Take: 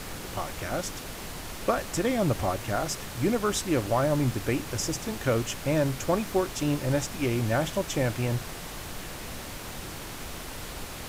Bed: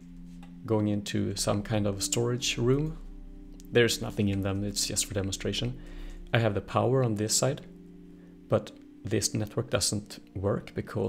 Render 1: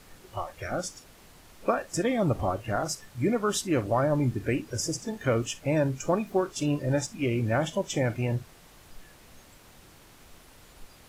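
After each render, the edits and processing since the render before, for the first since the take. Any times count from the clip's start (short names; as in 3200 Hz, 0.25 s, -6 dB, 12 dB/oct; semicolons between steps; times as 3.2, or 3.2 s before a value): noise print and reduce 15 dB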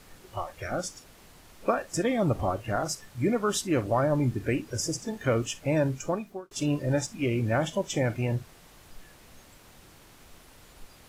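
5.92–6.51 fade out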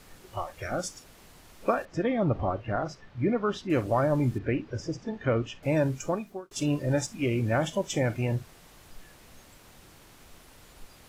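1.85–3.7 air absorption 250 m; 4.38–5.63 air absorption 230 m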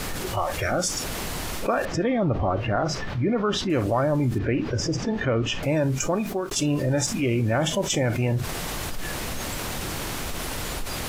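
fast leveller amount 70%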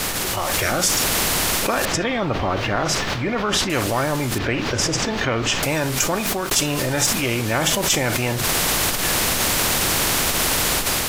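AGC gain up to 8 dB; spectral compressor 2:1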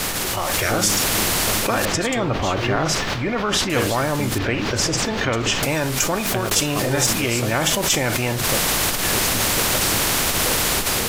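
add bed -2 dB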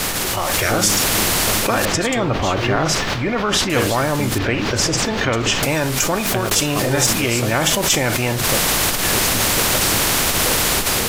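gain +2.5 dB; limiter -3 dBFS, peak gain reduction 1.5 dB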